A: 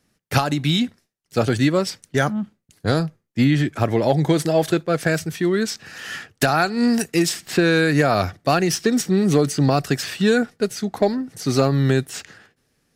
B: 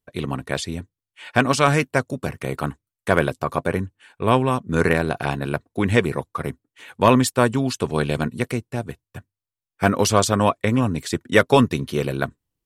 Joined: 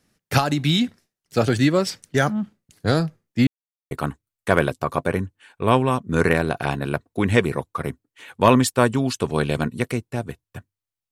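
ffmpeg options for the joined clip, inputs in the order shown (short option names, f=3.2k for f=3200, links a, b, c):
-filter_complex "[0:a]apad=whole_dur=11.11,atrim=end=11.11,asplit=2[a][b];[a]atrim=end=3.47,asetpts=PTS-STARTPTS,afade=t=out:st=3.466:d=0.004:c=hsin[c];[b]atrim=start=3.47:end=3.91,asetpts=PTS-STARTPTS,volume=0[d];[1:a]atrim=start=2.51:end=9.71,asetpts=PTS-STARTPTS,afade=t=in:d=0.004:c=hsin[e];[c][d][e]concat=n=3:v=0:a=1"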